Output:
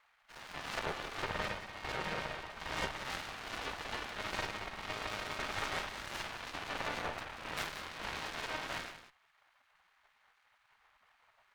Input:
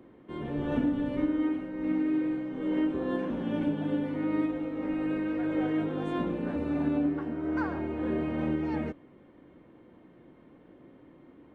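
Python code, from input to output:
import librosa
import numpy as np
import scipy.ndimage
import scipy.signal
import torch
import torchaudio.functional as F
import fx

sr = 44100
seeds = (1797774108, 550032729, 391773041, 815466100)

p1 = scipy.ndimage.median_filter(x, 41, mode='constant')
p2 = fx.spec_gate(p1, sr, threshold_db=-25, keep='weak')
p3 = 10.0 ** (-35.5 / 20.0) * np.tanh(p2 / 10.0 ** (-35.5 / 20.0))
p4 = fx.cheby_harmonics(p3, sr, harmonics=(3, 4, 5), levels_db=(-11, -14, -30), full_scale_db=-36.0)
p5 = p4 + fx.echo_single(p4, sr, ms=183, db=-12.0, dry=0)
y = p5 * librosa.db_to_amplitude(14.0)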